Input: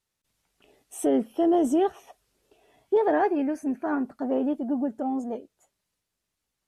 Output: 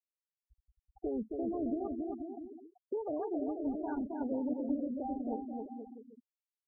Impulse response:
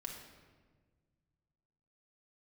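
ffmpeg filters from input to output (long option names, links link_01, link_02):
-filter_complex "[0:a]afftfilt=real='re*pow(10,9/40*sin(2*PI*(0.97*log(max(b,1)*sr/1024/100)/log(2)-(0.7)*(pts-256)/sr)))':imag='im*pow(10,9/40*sin(2*PI*(0.97*log(max(b,1)*sr/1024/100)/log(2)-(0.7)*(pts-256)/sr)))':win_size=1024:overlap=0.75,lowshelf=frequency=150:gain=4,acrossover=split=130[link_01][link_02];[link_02]acompressor=threshold=-38dB:ratio=4[link_03];[link_01][link_03]amix=inputs=2:normalize=0,asplit=2[link_04][link_05];[link_05]adelay=244.9,volume=-30dB,highshelf=frequency=4000:gain=-5.51[link_06];[link_04][link_06]amix=inputs=2:normalize=0,adynamicsmooth=sensitivity=4:basefreq=1900,aeval=exprs='val(0)+0.00112*(sin(2*PI*60*n/s)+sin(2*PI*2*60*n/s)/2+sin(2*PI*3*60*n/s)/3+sin(2*PI*4*60*n/s)/4+sin(2*PI*5*60*n/s)/5)':channel_layout=same,asplit=2[link_07][link_08];[link_08]aecho=0:1:270|486|658.8|797|907.6:0.631|0.398|0.251|0.158|0.1[link_09];[link_07][link_09]amix=inputs=2:normalize=0,afftfilt=real='re*gte(hypot(re,im),0.0178)':imag='im*gte(hypot(re,im),0.0178)':win_size=1024:overlap=0.75"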